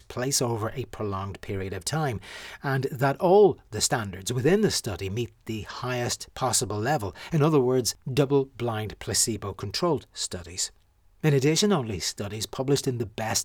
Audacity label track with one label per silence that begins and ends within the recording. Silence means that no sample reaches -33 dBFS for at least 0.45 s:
10.670000	11.240000	silence